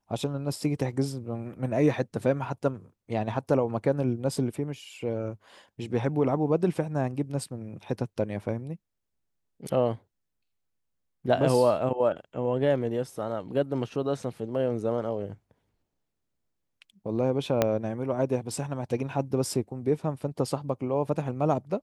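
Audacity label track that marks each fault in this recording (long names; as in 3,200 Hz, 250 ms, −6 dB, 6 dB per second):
17.620000	17.620000	click −8 dBFS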